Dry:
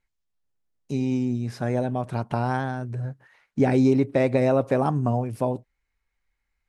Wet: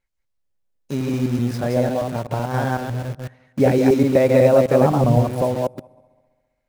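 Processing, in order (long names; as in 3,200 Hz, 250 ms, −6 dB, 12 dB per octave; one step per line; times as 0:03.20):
delay that plays each chunk backwards 126 ms, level −2 dB
on a send: echo machine with several playback heads 67 ms, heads second and third, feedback 47%, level −23 dB
0:01.91–0:02.54: on the sum: downward compressor, threshold −22 dBFS, peak gain reduction 6.5 dB
0:04.81–0:05.23: spectral tilt −1.5 dB per octave
in parallel at −6 dB: bit reduction 5 bits
on the sum: parametric band 550 Hz +7 dB 0.31 octaves
level −1.5 dB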